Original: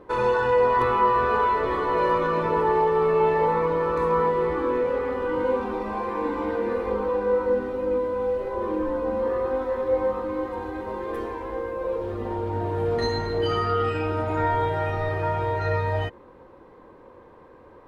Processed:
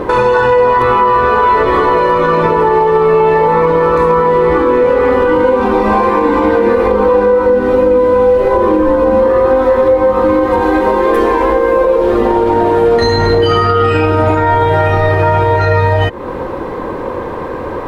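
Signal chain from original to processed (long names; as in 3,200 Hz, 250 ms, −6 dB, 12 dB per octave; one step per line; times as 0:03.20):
0:10.61–0:13.02: parametric band 100 Hz −14.5 dB 0.81 octaves
downward compressor 6 to 1, threshold −36 dBFS, peak gain reduction 18.5 dB
boost into a limiter +29.5 dB
level −1 dB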